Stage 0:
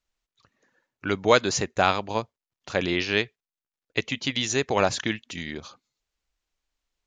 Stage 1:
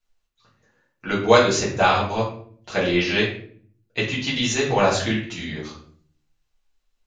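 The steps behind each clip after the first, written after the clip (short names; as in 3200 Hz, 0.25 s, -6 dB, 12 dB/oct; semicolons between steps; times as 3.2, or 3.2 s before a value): shoebox room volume 59 m³, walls mixed, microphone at 1.6 m; gain -4 dB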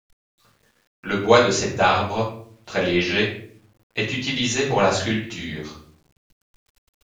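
requantised 10-bit, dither none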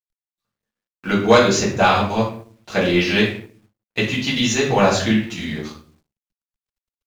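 gate with hold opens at -43 dBFS; bell 210 Hz +6.5 dB 0.34 oct; sample leveller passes 1; gain -1 dB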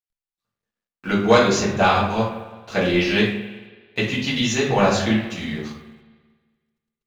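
high shelf 7200 Hz -4 dB; spring tank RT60 1.5 s, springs 44/54 ms, chirp 40 ms, DRR 10 dB; gain -2 dB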